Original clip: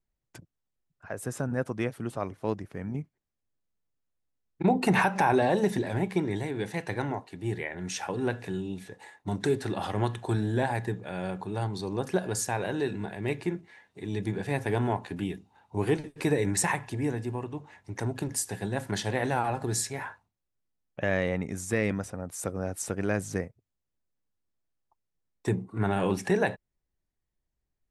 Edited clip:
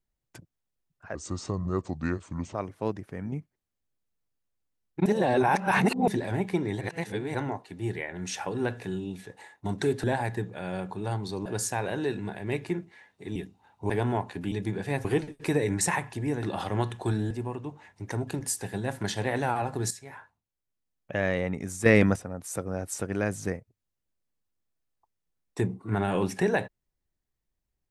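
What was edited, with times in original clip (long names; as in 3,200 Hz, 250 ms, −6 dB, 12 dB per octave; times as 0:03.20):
0:01.15–0:02.17: play speed 73%
0:04.68–0:05.70: reverse
0:06.43–0:06.97: reverse
0:09.66–0:10.54: move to 0:17.19
0:11.96–0:12.22: remove
0:14.12–0:14.65: swap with 0:15.27–0:15.81
0:19.79–0:21.11: fade in, from −12.5 dB
0:21.74–0:22.04: clip gain +8.5 dB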